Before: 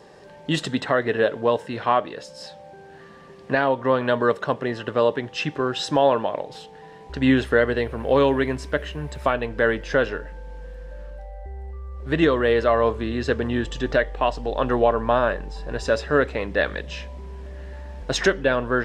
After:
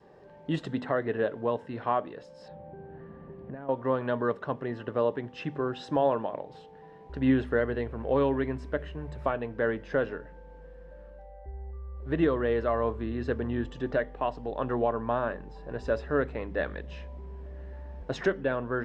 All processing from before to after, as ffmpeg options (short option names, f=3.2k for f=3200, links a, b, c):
-filter_complex "[0:a]asettb=1/sr,asplit=3[a][b][c];[a]atrim=end=2.484[d];[b]atrim=start=2.48:end=3.69,asetpts=PTS-STARTPTS,afade=t=in:d=0.004:c=qsin,afade=t=out:st=1.206:d=0.004:c=qsin,lowpass=2.5k,lowshelf=f=370:g=11.5,acompressor=threshold=-30dB:ratio=10:attack=3.2:release=140:knee=1:detection=peak[e];[c]atrim=start=3.686[f];[d][e]acrossfade=d=0.004:c1=hsin:c2=qsin[g];[g][f]acrossfade=d=0.004:c1=qsin:c2=hsin,lowpass=f=1k:p=1,bandreject=f=49.9:t=h:w=4,bandreject=f=99.8:t=h:w=4,bandreject=f=149.7:t=h:w=4,bandreject=f=199.6:t=h:w=4,bandreject=f=249.5:t=h:w=4,adynamicequalizer=threshold=0.02:dfrequency=530:dqfactor=1.6:tfrequency=530:tqfactor=1.6:attack=5:release=100:ratio=0.375:range=2:mode=cutabove:tftype=bell,volume=-5dB"